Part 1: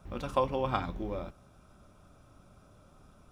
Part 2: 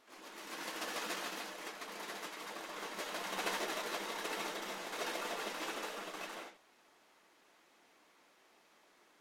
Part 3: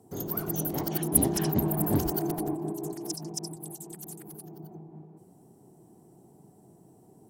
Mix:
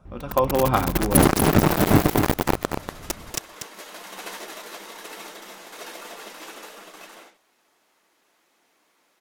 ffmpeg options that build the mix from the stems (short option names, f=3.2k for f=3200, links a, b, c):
-filter_complex "[0:a]volume=2dB,asplit=2[a][b];[b]volume=-20dB[c];[1:a]crystalizer=i=3.5:c=0,adelay=800,volume=-14dB[d];[2:a]acrusher=bits=3:mix=0:aa=0.000001,volume=0.5dB,asplit=2[e][f];[f]volume=-7.5dB[g];[c][g]amix=inputs=2:normalize=0,aecho=0:1:240:1[h];[a][d][e][h]amix=inputs=4:normalize=0,highshelf=f=2.7k:g=-9.5,dynaudnorm=f=260:g=3:m=14.5dB"